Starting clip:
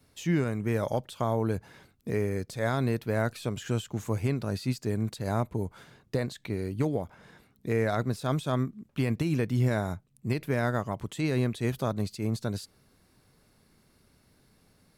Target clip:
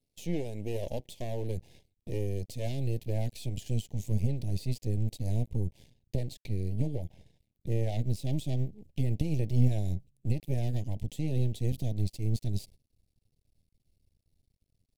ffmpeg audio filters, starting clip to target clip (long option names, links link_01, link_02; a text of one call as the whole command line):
ffmpeg -i in.wav -af "agate=range=-14dB:threshold=-51dB:ratio=16:detection=peak,asubboost=boost=8:cutoff=91,aeval=exprs='max(val(0),0)':channel_layout=same,asuperstop=centerf=1300:order=4:qfactor=0.68" out.wav